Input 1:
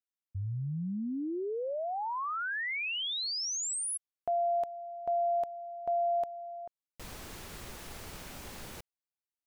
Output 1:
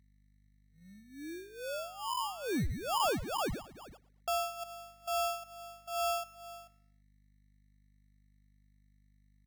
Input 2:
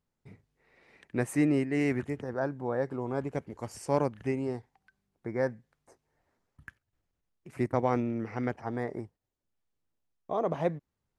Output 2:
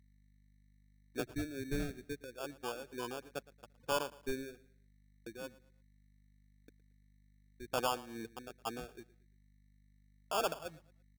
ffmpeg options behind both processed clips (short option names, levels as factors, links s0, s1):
-af "aemphasis=mode=production:type=50kf,afftfilt=real='re*gte(hypot(re,im),0.0447)':imag='im*gte(hypot(re,im),0.0447)':win_size=1024:overlap=0.75,highpass=f=1400:p=1,agate=range=0.0316:threshold=0.00251:ratio=16:release=149:detection=peak,lowpass=f=4400:w=0.5412,lowpass=f=4400:w=1.3066,tremolo=f=2.3:d=0.82,aeval=exprs='val(0)+0.000282*(sin(2*PI*50*n/s)+sin(2*PI*2*50*n/s)/2+sin(2*PI*3*50*n/s)/3+sin(2*PI*4*50*n/s)/4+sin(2*PI*5*50*n/s)/5)':c=same,acrusher=samples=22:mix=1:aa=0.000001,asoftclip=type=tanh:threshold=0.0316,aecho=1:1:114|228|342:0.1|0.034|0.0116,volume=2"